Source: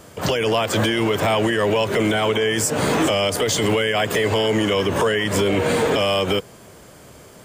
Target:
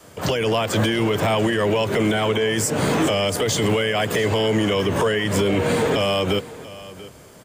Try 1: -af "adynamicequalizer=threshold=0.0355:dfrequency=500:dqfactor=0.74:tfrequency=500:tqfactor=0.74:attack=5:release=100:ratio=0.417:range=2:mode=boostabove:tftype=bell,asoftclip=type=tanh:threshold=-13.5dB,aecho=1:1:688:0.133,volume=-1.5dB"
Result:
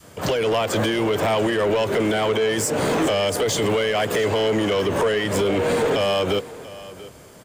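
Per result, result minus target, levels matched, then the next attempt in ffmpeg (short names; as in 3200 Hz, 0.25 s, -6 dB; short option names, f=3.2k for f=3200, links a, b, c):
soft clip: distortion +16 dB; 125 Hz band -4.0 dB
-af "adynamicequalizer=threshold=0.0355:dfrequency=500:dqfactor=0.74:tfrequency=500:tqfactor=0.74:attack=5:release=100:ratio=0.417:range=2:mode=boostabove:tftype=bell,asoftclip=type=tanh:threshold=-5dB,aecho=1:1:688:0.133,volume=-1.5dB"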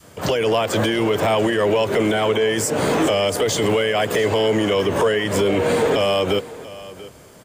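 125 Hz band -4.5 dB
-af "adynamicequalizer=threshold=0.0355:dfrequency=140:dqfactor=0.74:tfrequency=140:tqfactor=0.74:attack=5:release=100:ratio=0.417:range=2:mode=boostabove:tftype=bell,asoftclip=type=tanh:threshold=-5dB,aecho=1:1:688:0.133,volume=-1.5dB"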